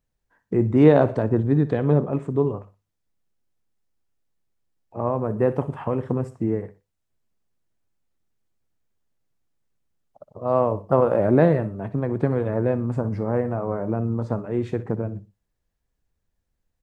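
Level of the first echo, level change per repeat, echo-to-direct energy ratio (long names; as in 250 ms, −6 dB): −17.0 dB, −8.5 dB, −16.5 dB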